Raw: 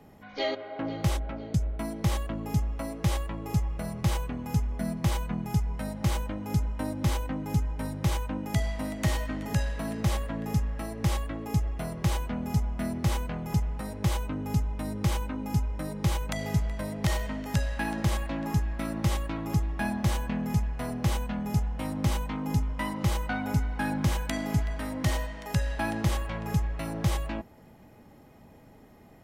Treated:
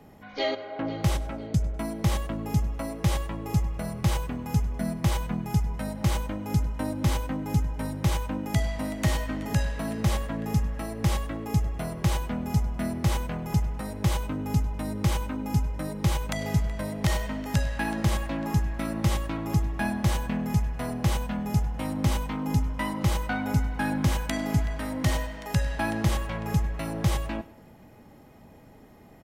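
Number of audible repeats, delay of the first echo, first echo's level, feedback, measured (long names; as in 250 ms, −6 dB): 2, 100 ms, −19.0 dB, 34%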